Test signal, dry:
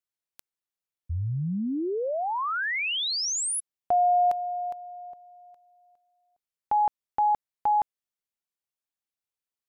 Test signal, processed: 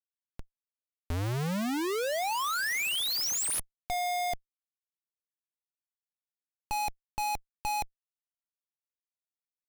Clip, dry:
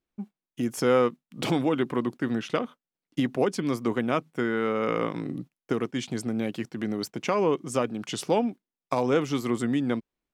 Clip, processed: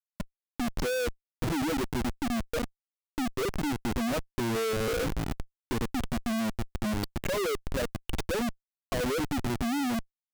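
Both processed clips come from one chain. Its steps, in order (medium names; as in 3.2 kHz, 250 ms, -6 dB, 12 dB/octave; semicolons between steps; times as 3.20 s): spectral contrast enhancement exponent 3.4; Schmitt trigger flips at -28.5 dBFS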